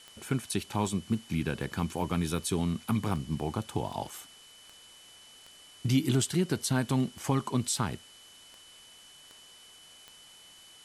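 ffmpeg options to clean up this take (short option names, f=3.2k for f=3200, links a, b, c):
-af "adeclick=t=4,bandreject=f=3k:w=30,afftdn=nr=22:nf=-54"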